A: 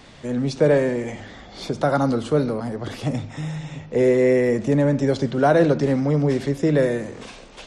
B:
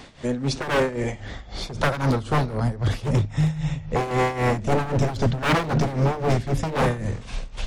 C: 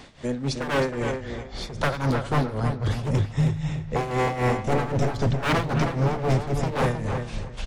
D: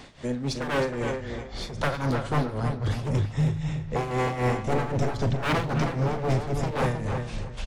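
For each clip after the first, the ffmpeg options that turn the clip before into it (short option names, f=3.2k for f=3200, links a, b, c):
-af "asubboost=boost=10:cutoff=100,aeval=exprs='0.133*(abs(mod(val(0)/0.133+3,4)-2)-1)':c=same,tremolo=f=3.8:d=0.78,volume=4.5dB"
-filter_complex "[0:a]asplit=2[a][b];[b]adelay=316,lowpass=f=3.3k:p=1,volume=-6.5dB,asplit=2[c][d];[d]adelay=316,lowpass=f=3.3k:p=1,volume=0.22,asplit=2[e][f];[f]adelay=316,lowpass=f=3.3k:p=1,volume=0.22[g];[a][c][e][g]amix=inputs=4:normalize=0,volume=-2.5dB"
-filter_complex "[0:a]asplit=2[a][b];[b]asoftclip=type=tanh:threshold=-30.5dB,volume=-7dB[c];[a][c]amix=inputs=2:normalize=0,asplit=2[d][e];[e]adelay=40,volume=-14dB[f];[d][f]amix=inputs=2:normalize=0,volume=-3.5dB"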